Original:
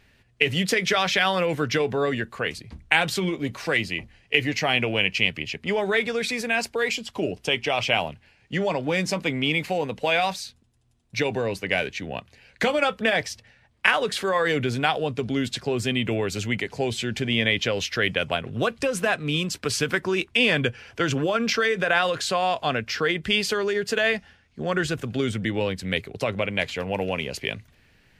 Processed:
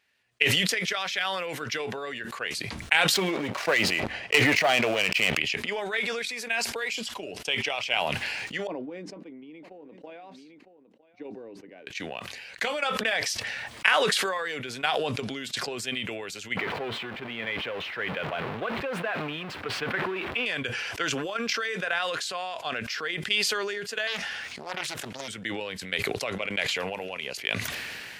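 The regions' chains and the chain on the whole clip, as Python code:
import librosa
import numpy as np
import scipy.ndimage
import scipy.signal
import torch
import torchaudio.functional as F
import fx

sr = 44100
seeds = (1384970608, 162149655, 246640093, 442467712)

y = fx.chain(x, sr, fx.lowpass(hz=1700.0, slope=6),
    fx.peak_eq(hz=640.0, db=6.5, octaves=0.38),
    fx.leveller(passes=3), at=(3.14, 5.37))
y = fx.chain(y, sr, fx.bandpass_q(hz=300.0, q=3.0),
    fx.echo_single(ms=957, db=-18.5), at=(8.67, 11.87))
y = fx.chain(y, sr, fx.zero_step(step_db=-20.0),
    fx.air_absorb(metres=500.0), at=(16.57, 20.46))
y = fx.chain(y, sr, fx.low_shelf(hz=460.0, db=-5.5),
    fx.doppler_dist(depth_ms=0.88), at=(24.07, 25.28))
y = fx.highpass(y, sr, hz=1000.0, slope=6)
y = fx.transient(y, sr, attack_db=8, sustain_db=2)
y = fx.sustainer(y, sr, db_per_s=21.0)
y = F.gain(torch.from_numpy(y), -9.0).numpy()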